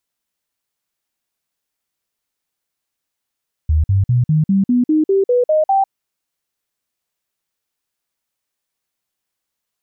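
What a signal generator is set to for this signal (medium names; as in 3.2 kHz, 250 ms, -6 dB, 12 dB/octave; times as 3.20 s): stepped sine 77.4 Hz up, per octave 3, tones 11, 0.15 s, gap 0.05 s -10.5 dBFS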